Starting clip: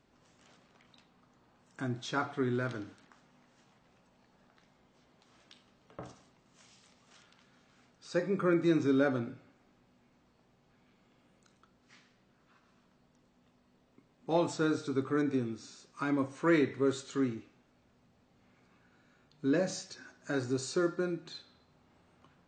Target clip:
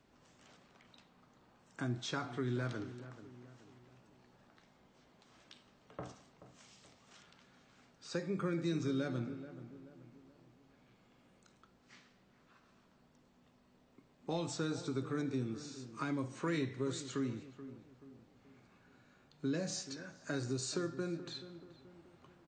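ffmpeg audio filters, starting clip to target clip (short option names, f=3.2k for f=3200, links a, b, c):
-filter_complex "[0:a]acrossover=split=180|3000[a][b][c];[b]acompressor=threshold=-37dB:ratio=6[d];[a][d][c]amix=inputs=3:normalize=0,asplit=2[e][f];[f]adelay=430,lowpass=f=1.4k:p=1,volume=-13dB,asplit=2[g][h];[h]adelay=430,lowpass=f=1.4k:p=1,volume=0.45,asplit=2[i][j];[j]adelay=430,lowpass=f=1.4k:p=1,volume=0.45,asplit=2[k][l];[l]adelay=430,lowpass=f=1.4k:p=1,volume=0.45[m];[e][g][i][k][m]amix=inputs=5:normalize=0"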